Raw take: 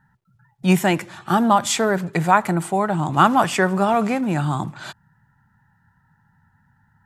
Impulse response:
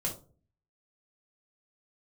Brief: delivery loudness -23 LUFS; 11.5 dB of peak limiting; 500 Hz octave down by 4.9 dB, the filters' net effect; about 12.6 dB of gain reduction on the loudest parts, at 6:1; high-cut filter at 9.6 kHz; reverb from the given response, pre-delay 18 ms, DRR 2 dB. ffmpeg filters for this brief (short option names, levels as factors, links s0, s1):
-filter_complex "[0:a]lowpass=9600,equalizer=f=500:t=o:g=-7,acompressor=threshold=0.0562:ratio=6,alimiter=level_in=1.12:limit=0.0631:level=0:latency=1,volume=0.891,asplit=2[s0][s1];[1:a]atrim=start_sample=2205,adelay=18[s2];[s1][s2]afir=irnorm=-1:irlink=0,volume=0.531[s3];[s0][s3]amix=inputs=2:normalize=0,volume=2.11"